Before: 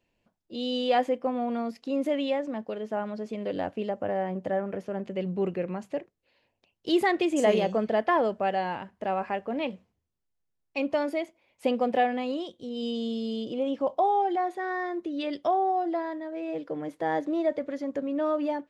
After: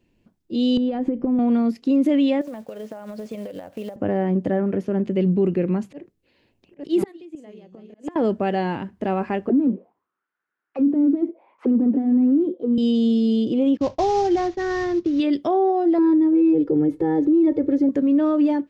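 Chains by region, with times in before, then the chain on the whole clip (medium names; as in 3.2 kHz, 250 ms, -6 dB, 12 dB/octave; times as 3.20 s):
0.77–1.39 s: tilt EQ -4 dB/octave + compression 10:1, threshold -29 dBFS
2.41–3.96 s: companded quantiser 6-bit + resonant low shelf 440 Hz -6.5 dB, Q 3 + compression 12:1, threshold -36 dBFS
5.72–8.16 s: chunks repeated in reverse 666 ms, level -5 dB + slow attack 179 ms + inverted gate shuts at -19 dBFS, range -29 dB
9.49–12.78 s: overdrive pedal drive 31 dB, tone 1.2 kHz, clips at -13.5 dBFS + auto-wah 270–1500 Hz, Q 5, down, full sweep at -20.5 dBFS
13.77–15.20 s: CVSD coder 32 kbps + expander -42 dBFS + resonant low shelf 150 Hz +10 dB, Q 1.5
15.98–17.89 s: tilt shelf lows +9 dB, about 780 Hz + comb 2.3 ms, depth 98%
whole clip: resonant low shelf 450 Hz +8 dB, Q 1.5; peak limiter -16 dBFS; trim +4 dB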